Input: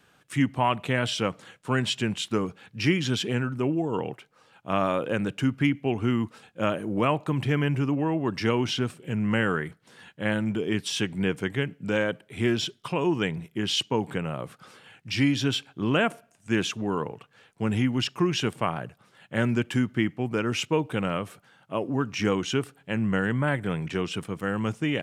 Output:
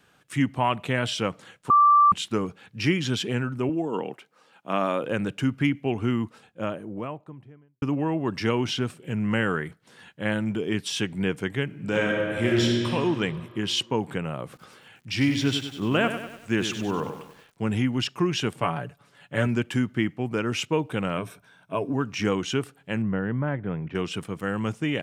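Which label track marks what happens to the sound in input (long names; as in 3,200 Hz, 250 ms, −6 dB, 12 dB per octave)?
1.700000	2.120000	beep over 1,170 Hz −13 dBFS
3.690000	5.040000	high-pass filter 170 Hz 24 dB per octave
5.940000	7.820000	fade out and dull
11.650000	12.910000	thrown reverb, RT60 2.5 s, DRR −1.5 dB
14.430000	17.700000	feedback echo at a low word length 97 ms, feedback 55%, word length 8 bits, level −9 dB
18.600000	19.470000	comb filter 7 ms, depth 55%
21.170000	21.930000	EQ curve with evenly spaced ripples crests per octave 1.6, crest to trough 9 dB
23.020000	23.950000	head-to-tape spacing loss at 10 kHz 42 dB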